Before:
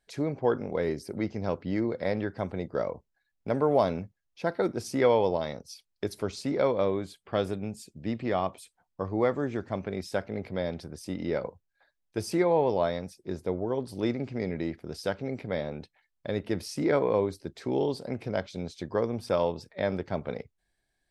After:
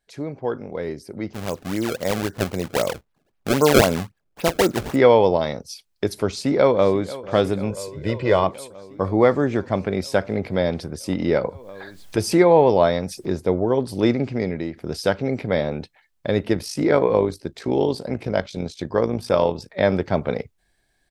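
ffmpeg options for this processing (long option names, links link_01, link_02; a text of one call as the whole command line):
ffmpeg -i in.wav -filter_complex "[0:a]asettb=1/sr,asplit=3[link_01][link_02][link_03];[link_01]atrim=end=1.334[link_04];[link_02]atrim=start=1.33:end=4.96,asetpts=PTS-STARTPTS,afade=type=in:duration=0.004:curve=qsin,afade=type=out:start_time=3.626:duration=0.004:curve=qsin,acrusher=samples=27:mix=1:aa=0.000001:lfo=1:lforange=43.2:lforate=3.8[link_05];[link_03]atrim=start=4.956[link_06];[link_04][link_05]acrossfade=duration=0.004:curve1=hsin:curve2=qsin[link_07];[link_07][link_06]acrossfade=duration=0.004:curve1=qsin:curve2=hsin,asplit=2[link_08][link_09];[link_09]afade=type=in:start_time=6.25:duration=0.01,afade=type=out:start_time=7.19:duration=0.01,aecho=0:1:490|980|1470|1960|2450|2940|3430|3920|4410|4900:0.141254|0.10594|0.0794552|0.0595914|0.0446936|0.0335202|0.0251401|0.0188551|0.0141413|0.010606[link_10];[link_08][link_10]amix=inputs=2:normalize=0,asettb=1/sr,asplit=3[link_11][link_12][link_13];[link_11]atrim=end=7.704[link_14];[link_12]atrim=start=7.7:end=8.44,asetpts=PTS-STARTPTS,afade=type=in:duration=0.004:curve=qsin,afade=type=out:start_time=0.736:duration=0.004:curve=qsin,aecho=1:1:2:0.65,atrim=end_sample=32634[link_15];[link_13]atrim=start=8.436[link_16];[link_14][link_15]acrossfade=duration=0.004:curve1=hsin:curve2=qsin[link_17];[link_17][link_16]acrossfade=duration=0.004:curve1=qsin:curve2=hsin,asettb=1/sr,asplit=3[link_18][link_19][link_20];[link_18]atrim=end=11.134[link_21];[link_19]atrim=start=11.13:end=13.32,asetpts=PTS-STARTPTS,afade=type=in:duration=0.004:curve=qsin,afade=type=out:start_time=2.186:duration=0.004:curve=qsin,acompressor=mode=upward:threshold=-31dB:ratio=2.5:attack=3.2:release=140:knee=2.83:detection=peak[link_22];[link_20]atrim=start=13.316[link_23];[link_21][link_22]acrossfade=duration=0.004:curve1=hsin:curve2=qsin[link_24];[link_24][link_23]acrossfade=duration=0.004:curve1=qsin:curve2=hsin,asplit=3[link_25][link_26][link_27];[link_25]afade=type=out:start_time=16.52:duration=0.02[link_28];[link_26]tremolo=f=53:d=0.571,afade=type=in:start_time=16.52:duration=0.02,afade=type=out:start_time=19.71:duration=0.02[link_29];[link_27]afade=type=in:start_time=19.71:duration=0.02[link_30];[link_28][link_29][link_30]amix=inputs=3:normalize=0,asplit=2[link_31][link_32];[link_31]atrim=end=14.76,asetpts=PTS-STARTPTS,afade=type=out:start_time=14.22:duration=0.54:silence=0.354813[link_33];[link_32]atrim=start=14.76,asetpts=PTS-STARTPTS,afade=type=in:duration=0.004:curve=hsin:silence=0.354813[link_34];[link_33][link_34]concat=n=2:v=0:a=1,dynaudnorm=framelen=140:gausssize=31:maxgain=11.5dB" out.wav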